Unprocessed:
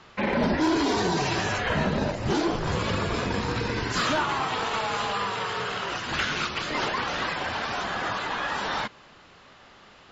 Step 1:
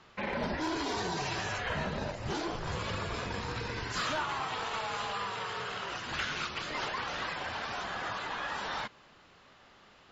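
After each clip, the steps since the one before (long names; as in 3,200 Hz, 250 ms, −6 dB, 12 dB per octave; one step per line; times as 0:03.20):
dynamic equaliser 260 Hz, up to −6 dB, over −38 dBFS, Q 0.86
level −7 dB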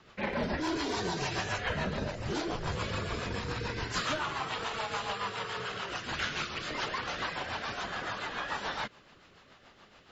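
rotating-speaker cabinet horn 7 Hz
level +3.5 dB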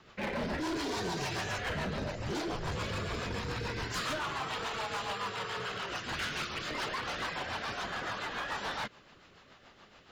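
gain into a clipping stage and back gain 31 dB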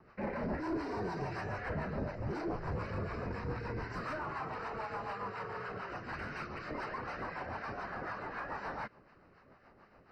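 moving average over 13 samples
two-band tremolo in antiphase 4 Hz, depth 50%, crossover 930 Hz
level +1 dB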